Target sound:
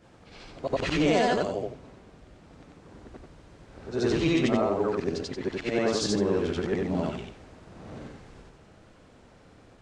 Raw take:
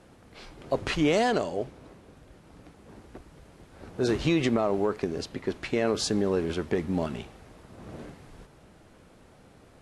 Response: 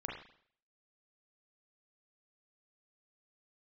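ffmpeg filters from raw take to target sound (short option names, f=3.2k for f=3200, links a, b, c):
-af "afftfilt=real='re':imag='-im':win_size=8192:overlap=0.75,lowpass=f=8.2k:w=0.5412,lowpass=f=8.2k:w=1.3066,volume=5dB"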